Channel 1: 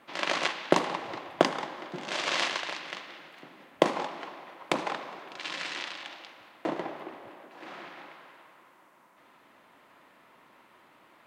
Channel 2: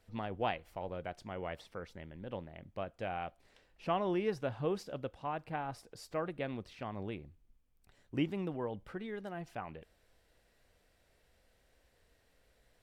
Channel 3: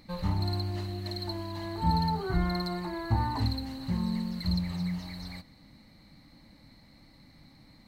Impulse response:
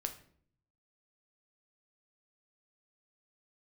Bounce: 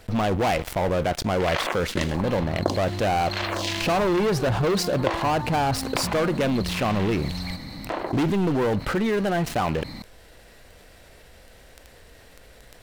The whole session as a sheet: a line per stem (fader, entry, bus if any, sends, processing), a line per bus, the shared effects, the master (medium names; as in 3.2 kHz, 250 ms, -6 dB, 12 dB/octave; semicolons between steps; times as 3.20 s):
-1.5 dB, 1.25 s, no send, crossover distortion -45.5 dBFS; lamp-driven phase shifter 1.1 Hz
+1.0 dB, 0.00 s, no send, waveshaping leveller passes 5
+2.0 dB, 2.15 s, no send, compression, threshold -39 dBFS, peak gain reduction 17 dB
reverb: none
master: level flattener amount 50%